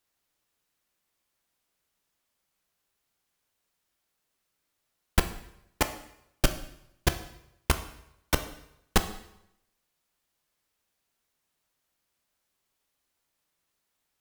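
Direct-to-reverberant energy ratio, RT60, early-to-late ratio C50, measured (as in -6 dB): 8.5 dB, 0.80 s, 12.0 dB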